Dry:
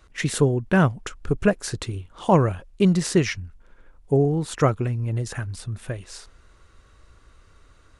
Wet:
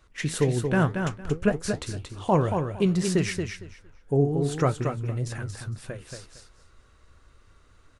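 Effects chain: flange 1.9 Hz, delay 6.6 ms, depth 7.3 ms, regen +72%; feedback echo 0.229 s, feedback 19%, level -6 dB

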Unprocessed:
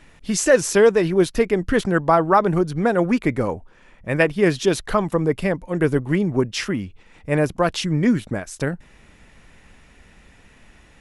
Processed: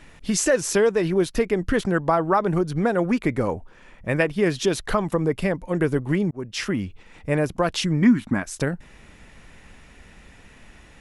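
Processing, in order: 6.31–6.79 fade in; 8.02–8.43 graphic EQ 250/500/1000/2000 Hz +12/-11/+11/+5 dB; compressor 2:1, threshold -23 dBFS, peak gain reduction 11 dB; gain +2 dB

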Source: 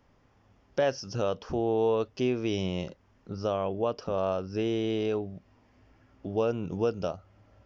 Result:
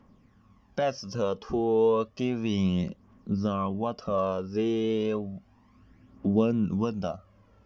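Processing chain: phaser 0.32 Hz, delay 2.6 ms, feedback 52%; small resonant body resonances 210/1100 Hz, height 12 dB, ringing for 50 ms; gain -2.5 dB

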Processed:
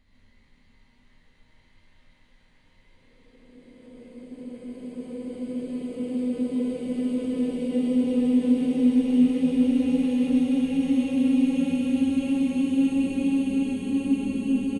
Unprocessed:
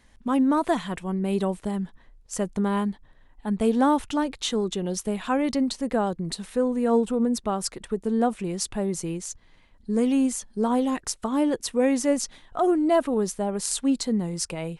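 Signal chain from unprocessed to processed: slices in reverse order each 0.17 s, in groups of 2; Paulstretch 41×, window 0.25 s, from 9.68; on a send: frequency-shifting echo 0.388 s, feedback 51%, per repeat -89 Hz, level -21 dB; on the sum: non-linear reverb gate 0.17 s rising, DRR -4 dB; gain -8.5 dB

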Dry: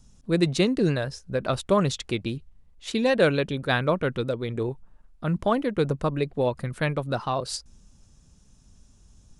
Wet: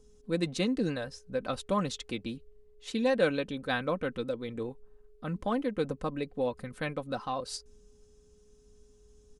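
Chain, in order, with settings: whine 420 Hz -51 dBFS; comb 3.9 ms, depth 52%; gain -8 dB

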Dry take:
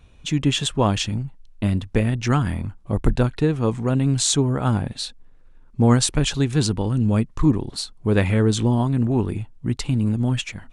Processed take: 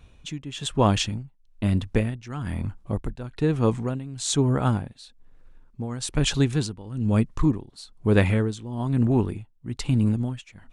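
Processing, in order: tremolo 1.1 Hz, depth 87%

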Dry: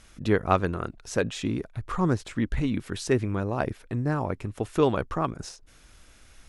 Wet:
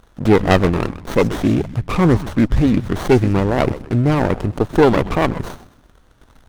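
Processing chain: sample leveller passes 2; frequency-shifting echo 0.127 s, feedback 35%, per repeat -130 Hz, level -14 dB; running maximum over 17 samples; gain +5.5 dB

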